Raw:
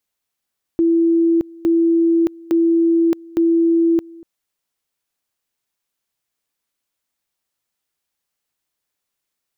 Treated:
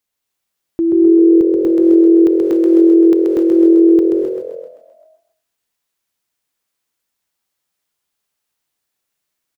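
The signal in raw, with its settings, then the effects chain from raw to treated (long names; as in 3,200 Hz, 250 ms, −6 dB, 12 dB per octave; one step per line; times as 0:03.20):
tone at two levels in turn 333 Hz −11.5 dBFS, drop 24 dB, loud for 0.62 s, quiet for 0.24 s, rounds 4
on a send: echo with shifted repeats 130 ms, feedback 56%, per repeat +43 Hz, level −4 dB
on the sum: reverb whose tail is shaped and stops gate 310 ms rising, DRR 3.5 dB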